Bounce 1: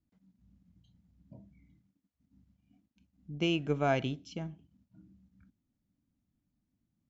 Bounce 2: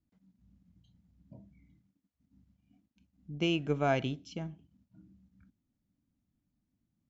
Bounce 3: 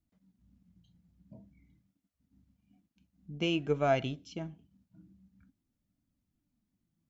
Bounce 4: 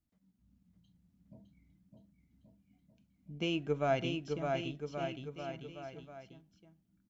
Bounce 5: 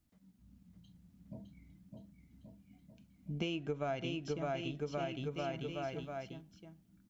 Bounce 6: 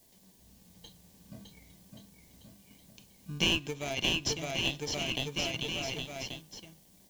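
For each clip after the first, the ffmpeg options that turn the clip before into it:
ffmpeg -i in.wav -af anull out.wav
ffmpeg -i in.wav -af "flanger=delay=1.4:depth=4.6:regen=65:speed=0.5:shape=sinusoidal,volume=4dB" out.wav
ffmpeg -i in.wav -af "aecho=1:1:610|1128|1569|1944|2262:0.631|0.398|0.251|0.158|0.1,volume=-3.5dB" out.wav
ffmpeg -i in.wav -af "acompressor=threshold=-42dB:ratio=8,volume=7.5dB" out.wav
ffmpeg -i in.wav -filter_complex "[0:a]aexciter=amount=12.4:drive=4.5:freq=2300,asplit=2[link_01][link_02];[link_02]acrusher=samples=33:mix=1:aa=0.000001,volume=-6dB[link_03];[link_01][link_03]amix=inputs=2:normalize=0,volume=-3dB" out.wav

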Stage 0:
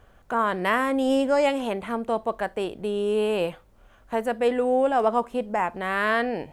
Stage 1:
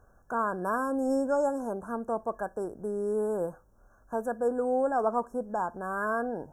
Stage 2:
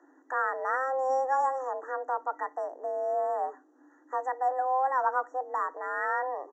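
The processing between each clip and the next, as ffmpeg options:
ffmpeg -i in.wav -af "afftfilt=real='re*(1-between(b*sr/4096,1700,5300))':imag='im*(1-between(b*sr/4096,1700,5300))':win_size=4096:overlap=0.75,volume=-5.5dB" out.wav
ffmpeg -i in.wav -af "afreqshift=260,aresample=16000,aresample=44100" out.wav

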